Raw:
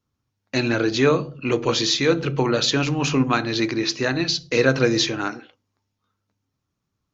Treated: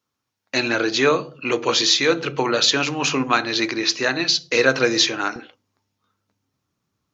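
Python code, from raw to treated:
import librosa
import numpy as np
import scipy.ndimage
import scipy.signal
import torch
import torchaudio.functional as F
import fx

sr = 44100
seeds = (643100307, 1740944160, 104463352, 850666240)

y = fx.highpass(x, sr, hz=fx.steps((0.0, 600.0), (5.36, 130.0)), slope=6)
y = y * librosa.db_to_amplitude(4.5)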